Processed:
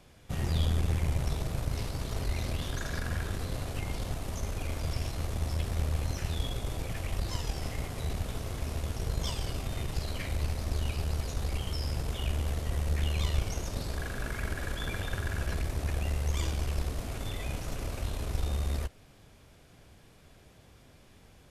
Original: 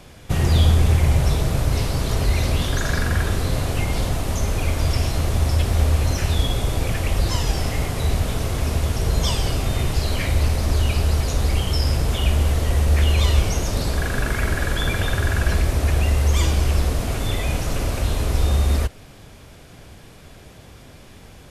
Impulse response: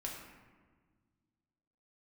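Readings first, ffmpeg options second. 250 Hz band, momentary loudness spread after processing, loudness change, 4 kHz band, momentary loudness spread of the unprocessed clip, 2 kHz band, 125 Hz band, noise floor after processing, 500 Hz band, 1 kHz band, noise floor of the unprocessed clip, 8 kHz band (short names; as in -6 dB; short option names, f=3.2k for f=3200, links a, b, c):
-12.0 dB, 6 LU, -12.5 dB, -12.5 dB, 6 LU, -12.5 dB, -13.0 dB, -57 dBFS, -12.5 dB, -12.5 dB, -44 dBFS, -12.5 dB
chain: -af "aeval=exprs='(tanh(2.51*val(0)+0.7)-tanh(0.7))/2.51':c=same,volume=-9dB"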